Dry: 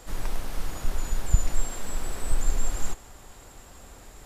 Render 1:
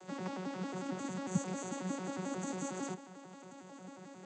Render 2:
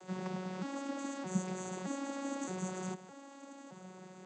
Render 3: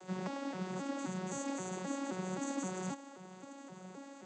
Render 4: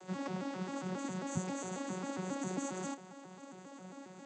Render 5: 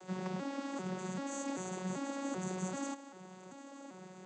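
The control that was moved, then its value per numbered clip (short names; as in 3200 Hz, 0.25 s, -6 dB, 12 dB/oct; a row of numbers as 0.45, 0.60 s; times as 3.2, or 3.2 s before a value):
arpeggiated vocoder, a note every: 90, 617, 263, 135, 390 ms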